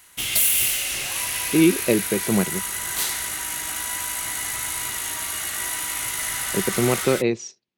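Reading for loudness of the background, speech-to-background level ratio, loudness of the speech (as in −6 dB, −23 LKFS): −23.5 LKFS, 1.0 dB, −22.5 LKFS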